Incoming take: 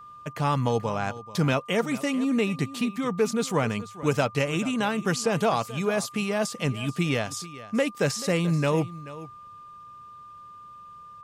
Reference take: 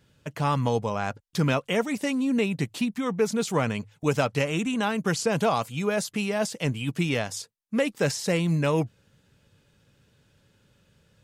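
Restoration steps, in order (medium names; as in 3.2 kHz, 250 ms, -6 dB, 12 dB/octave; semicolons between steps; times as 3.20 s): band-stop 1.2 kHz, Q 30; inverse comb 434 ms -16.5 dB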